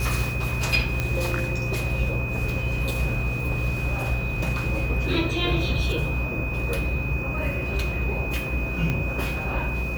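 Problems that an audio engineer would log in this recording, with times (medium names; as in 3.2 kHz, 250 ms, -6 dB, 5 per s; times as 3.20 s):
buzz 60 Hz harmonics 34 -30 dBFS
whine 2.5 kHz -31 dBFS
1.00 s: pop -11 dBFS
8.90 s: pop -14 dBFS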